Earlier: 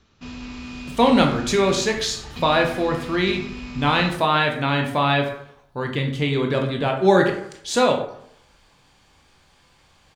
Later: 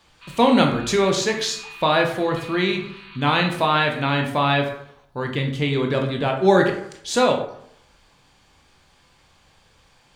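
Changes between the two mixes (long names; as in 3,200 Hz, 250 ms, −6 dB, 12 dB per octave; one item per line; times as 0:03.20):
speech: entry −0.60 s
background: add linear-phase brick-wall band-pass 920–4,600 Hz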